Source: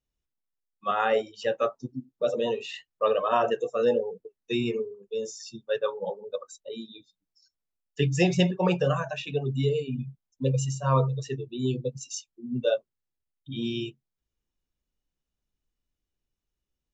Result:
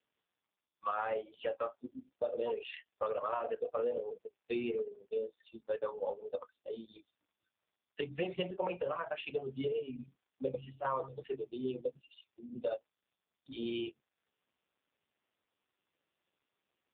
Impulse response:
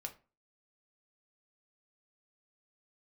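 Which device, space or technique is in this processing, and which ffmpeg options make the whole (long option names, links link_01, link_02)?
voicemail: -af "highpass=410,lowpass=2800,acompressor=threshold=-31dB:ratio=10,volume=1dB" -ar 8000 -c:a libopencore_amrnb -b:a 5150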